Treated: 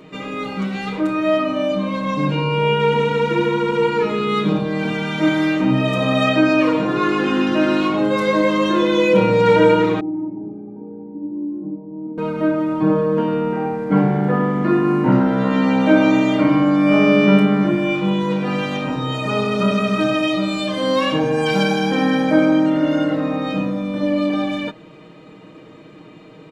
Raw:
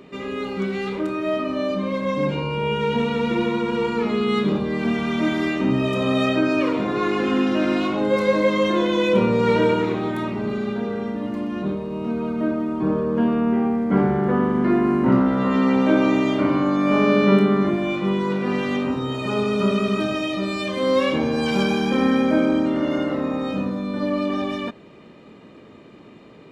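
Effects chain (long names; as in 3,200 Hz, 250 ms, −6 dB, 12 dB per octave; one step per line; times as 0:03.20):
0:10.00–0:12.18: formant resonators in series u
comb filter 6.4 ms, depth 79%
level +1.5 dB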